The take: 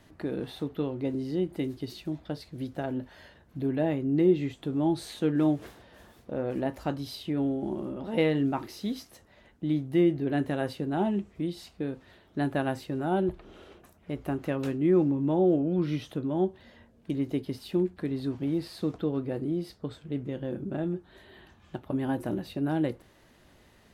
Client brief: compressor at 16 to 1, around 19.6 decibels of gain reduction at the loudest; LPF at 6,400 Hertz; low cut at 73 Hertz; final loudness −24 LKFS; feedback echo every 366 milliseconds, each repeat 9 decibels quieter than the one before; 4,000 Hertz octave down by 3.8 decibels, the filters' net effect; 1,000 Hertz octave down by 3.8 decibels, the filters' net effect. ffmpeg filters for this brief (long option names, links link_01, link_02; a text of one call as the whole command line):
ffmpeg -i in.wav -af "highpass=73,lowpass=6400,equalizer=frequency=1000:width_type=o:gain=-5.5,equalizer=frequency=4000:width_type=o:gain=-4,acompressor=threshold=-38dB:ratio=16,aecho=1:1:366|732|1098|1464:0.355|0.124|0.0435|0.0152,volume=19.5dB" out.wav